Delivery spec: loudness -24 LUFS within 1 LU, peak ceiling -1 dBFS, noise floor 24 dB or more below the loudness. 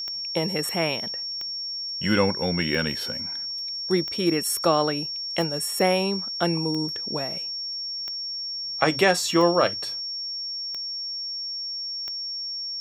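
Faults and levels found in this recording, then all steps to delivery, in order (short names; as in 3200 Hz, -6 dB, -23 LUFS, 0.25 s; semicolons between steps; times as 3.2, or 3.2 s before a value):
clicks 10; steady tone 5500 Hz; tone level -29 dBFS; loudness -25.0 LUFS; peak -3.0 dBFS; loudness target -24.0 LUFS
-> de-click; notch 5500 Hz, Q 30; gain +1 dB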